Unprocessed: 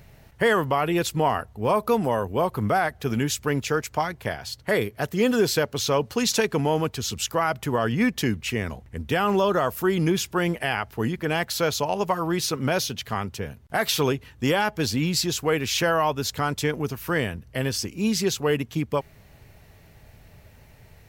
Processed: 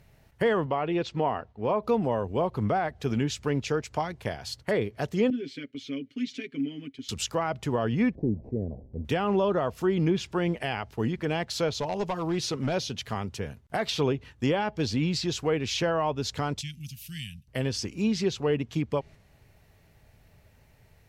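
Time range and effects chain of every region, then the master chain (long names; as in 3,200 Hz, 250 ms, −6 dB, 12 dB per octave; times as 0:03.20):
0:00.66–0:01.83: Gaussian smoothing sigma 1.7 samples + low-shelf EQ 130 Hz −9 dB
0:05.30–0:07.09: formant filter i + comb filter 7.4 ms, depth 77%
0:08.15–0:09.05: linear delta modulator 32 kbit/s, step −38.5 dBFS + inverse Chebyshev low-pass filter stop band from 1,200 Hz
0:11.68–0:12.74: hard clipping −20 dBFS + log-companded quantiser 8 bits
0:16.61–0:17.48: elliptic band-stop filter 170–2,800 Hz, stop band 60 dB + low-shelf EQ 200 Hz −9 dB
whole clip: treble cut that deepens with the level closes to 2,800 Hz, closed at −18 dBFS; dynamic equaliser 1,500 Hz, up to −7 dB, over −38 dBFS, Q 0.99; noise gate −43 dBFS, range −6 dB; level −2 dB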